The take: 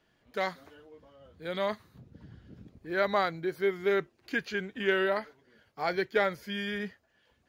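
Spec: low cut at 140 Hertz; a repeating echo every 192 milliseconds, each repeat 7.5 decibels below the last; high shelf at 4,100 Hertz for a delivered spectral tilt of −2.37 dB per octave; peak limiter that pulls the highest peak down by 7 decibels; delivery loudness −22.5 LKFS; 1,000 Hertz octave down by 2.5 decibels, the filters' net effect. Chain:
high-pass filter 140 Hz
parametric band 1,000 Hz −4 dB
high-shelf EQ 4,100 Hz +6 dB
brickwall limiter −21.5 dBFS
repeating echo 192 ms, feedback 42%, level −7.5 dB
level +11.5 dB

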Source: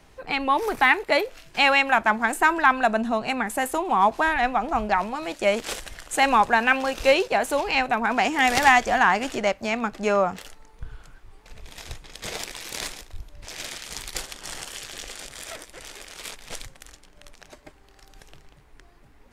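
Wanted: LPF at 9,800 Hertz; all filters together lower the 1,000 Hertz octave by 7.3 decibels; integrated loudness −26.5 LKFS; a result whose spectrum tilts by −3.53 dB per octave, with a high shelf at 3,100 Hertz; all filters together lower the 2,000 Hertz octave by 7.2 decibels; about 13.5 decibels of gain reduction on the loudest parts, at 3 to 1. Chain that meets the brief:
low-pass filter 9,800 Hz
parametric band 1,000 Hz −8.5 dB
parametric band 2,000 Hz −4 dB
high-shelf EQ 3,100 Hz −6.5 dB
downward compressor 3 to 1, threshold −35 dBFS
level +11 dB

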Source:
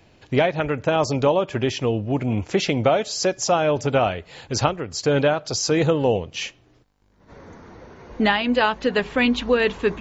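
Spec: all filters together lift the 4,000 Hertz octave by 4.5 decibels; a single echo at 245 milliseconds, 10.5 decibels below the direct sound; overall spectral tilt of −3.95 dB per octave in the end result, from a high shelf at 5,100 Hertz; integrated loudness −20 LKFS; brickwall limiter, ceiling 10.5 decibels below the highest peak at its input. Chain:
parametric band 4,000 Hz +3 dB
high-shelf EQ 5,100 Hz +6.5 dB
brickwall limiter −14 dBFS
single-tap delay 245 ms −10.5 dB
level +3.5 dB

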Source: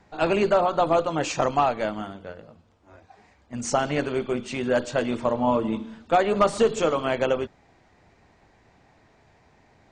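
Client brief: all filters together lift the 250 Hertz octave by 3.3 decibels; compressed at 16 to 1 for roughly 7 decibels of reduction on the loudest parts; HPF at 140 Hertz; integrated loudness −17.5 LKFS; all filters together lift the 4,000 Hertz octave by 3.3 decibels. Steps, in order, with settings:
high-pass filter 140 Hz
parametric band 250 Hz +4.5 dB
parametric band 4,000 Hz +4.5 dB
downward compressor 16 to 1, threshold −21 dBFS
level +10 dB

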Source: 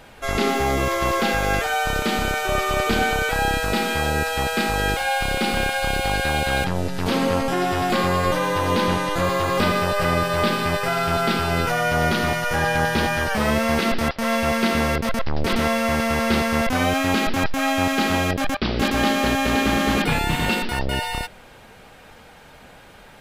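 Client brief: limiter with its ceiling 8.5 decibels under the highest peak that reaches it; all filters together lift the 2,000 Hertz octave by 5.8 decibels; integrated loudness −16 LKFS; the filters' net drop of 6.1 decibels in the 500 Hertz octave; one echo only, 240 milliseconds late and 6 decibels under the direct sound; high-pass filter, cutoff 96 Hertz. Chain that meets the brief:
high-pass filter 96 Hz
parametric band 500 Hz −8.5 dB
parametric band 2,000 Hz +8 dB
brickwall limiter −14 dBFS
single-tap delay 240 ms −6 dB
level +5.5 dB

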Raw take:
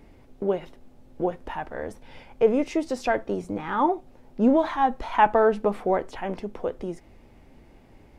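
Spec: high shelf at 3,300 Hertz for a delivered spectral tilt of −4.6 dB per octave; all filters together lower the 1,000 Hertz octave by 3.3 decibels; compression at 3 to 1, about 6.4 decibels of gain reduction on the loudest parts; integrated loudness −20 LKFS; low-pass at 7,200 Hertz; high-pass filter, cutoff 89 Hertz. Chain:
high-pass filter 89 Hz
low-pass filter 7,200 Hz
parametric band 1,000 Hz −4.5 dB
high-shelf EQ 3,300 Hz +3.5 dB
downward compressor 3 to 1, threshold −23 dBFS
level +10.5 dB

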